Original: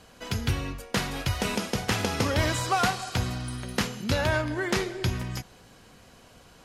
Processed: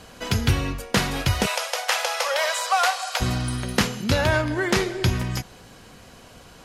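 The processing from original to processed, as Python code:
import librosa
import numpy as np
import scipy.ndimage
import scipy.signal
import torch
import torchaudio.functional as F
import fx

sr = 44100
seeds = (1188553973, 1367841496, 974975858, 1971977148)

p1 = fx.steep_highpass(x, sr, hz=510.0, slope=72, at=(1.45, 3.2), fade=0.02)
p2 = fx.rider(p1, sr, range_db=10, speed_s=0.5)
y = p1 + (p2 * librosa.db_to_amplitude(-0.5))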